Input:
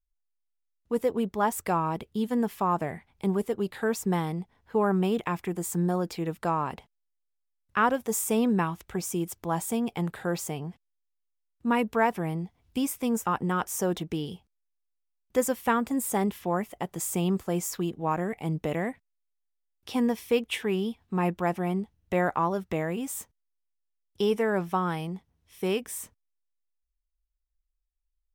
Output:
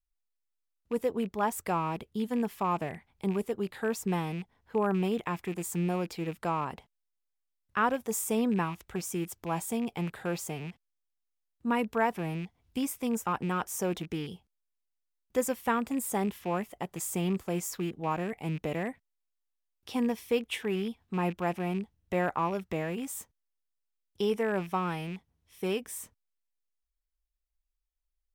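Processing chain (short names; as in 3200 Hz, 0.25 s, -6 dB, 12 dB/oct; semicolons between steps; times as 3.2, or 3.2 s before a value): rattling part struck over -37 dBFS, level -33 dBFS; gain -3.5 dB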